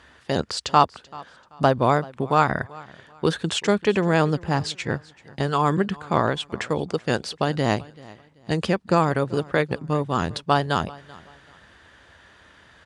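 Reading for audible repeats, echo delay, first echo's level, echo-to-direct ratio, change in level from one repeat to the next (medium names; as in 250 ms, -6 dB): 2, 385 ms, -21.5 dB, -21.0 dB, -10.5 dB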